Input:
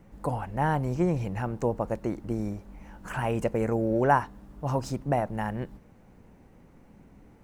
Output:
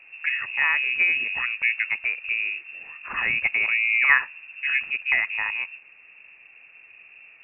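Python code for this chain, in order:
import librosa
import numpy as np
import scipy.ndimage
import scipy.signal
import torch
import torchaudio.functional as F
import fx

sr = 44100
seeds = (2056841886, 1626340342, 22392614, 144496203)

y = fx.freq_invert(x, sr, carrier_hz=2700)
y = y * 10.0 ** (3.5 / 20.0)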